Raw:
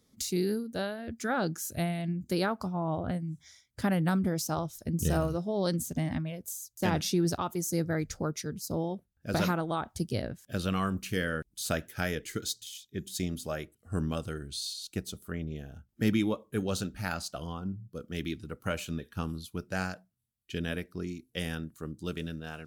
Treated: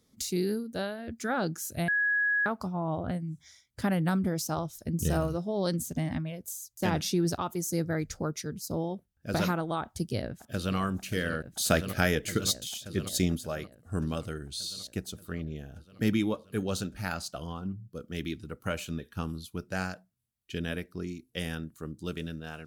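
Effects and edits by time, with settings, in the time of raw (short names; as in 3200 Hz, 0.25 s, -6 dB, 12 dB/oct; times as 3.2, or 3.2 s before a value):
1.88–2.46 bleep 1670 Hz -23.5 dBFS
9.82–10.76 echo throw 0.58 s, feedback 80%, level -11.5 dB
11.44–13.37 gain +6 dB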